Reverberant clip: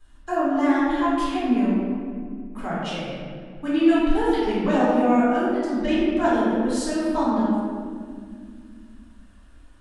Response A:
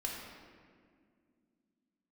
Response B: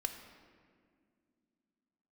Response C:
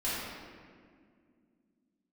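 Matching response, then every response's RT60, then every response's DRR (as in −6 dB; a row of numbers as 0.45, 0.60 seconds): C; 2.1, 2.1, 2.1 seconds; −2.0, 6.5, −10.5 decibels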